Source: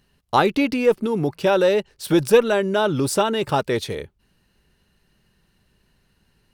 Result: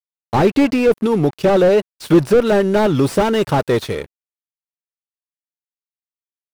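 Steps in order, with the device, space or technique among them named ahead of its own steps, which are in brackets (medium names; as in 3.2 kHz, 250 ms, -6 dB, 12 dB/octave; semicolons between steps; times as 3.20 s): early transistor amplifier (crossover distortion -41.5 dBFS; slew-rate limiter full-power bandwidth 78 Hz); 2.38–3.86 s: treble shelf 9.8 kHz +4.5 dB; trim +7 dB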